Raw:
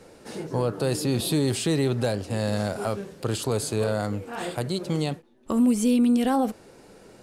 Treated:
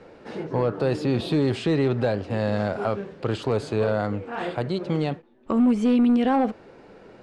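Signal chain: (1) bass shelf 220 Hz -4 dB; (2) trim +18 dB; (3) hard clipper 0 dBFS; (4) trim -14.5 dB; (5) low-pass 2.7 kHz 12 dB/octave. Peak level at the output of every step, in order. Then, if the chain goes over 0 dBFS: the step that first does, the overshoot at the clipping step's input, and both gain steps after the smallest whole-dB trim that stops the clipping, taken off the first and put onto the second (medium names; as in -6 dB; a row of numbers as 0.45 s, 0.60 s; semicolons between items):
-14.5 dBFS, +3.5 dBFS, 0.0 dBFS, -14.5 dBFS, -14.0 dBFS; step 2, 3.5 dB; step 2 +14 dB, step 4 -10.5 dB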